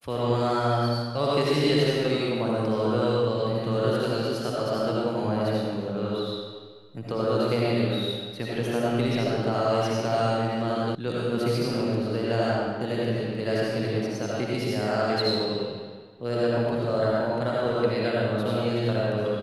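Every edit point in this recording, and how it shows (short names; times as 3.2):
10.95 sound cut off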